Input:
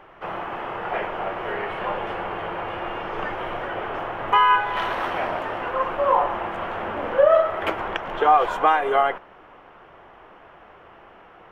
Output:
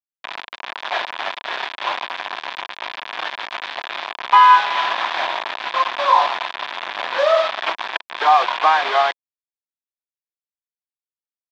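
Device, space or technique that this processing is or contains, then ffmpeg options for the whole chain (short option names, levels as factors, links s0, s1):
hand-held game console: -af "acrusher=bits=3:mix=0:aa=0.000001,highpass=440,equalizer=f=460:t=q:w=4:g=-7,equalizer=f=700:t=q:w=4:g=4,equalizer=f=1000:t=q:w=4:g=9,equalizer=f=1700:t=q:w=4:g=6,equalizer=f=2400:t=q:w=4:g=5,equalizer=f=3500:t=q:w=4:g=8,lowpass=f=4500:w=0.5412,lowpass=f=4500:w=1.3066,volume=0.841"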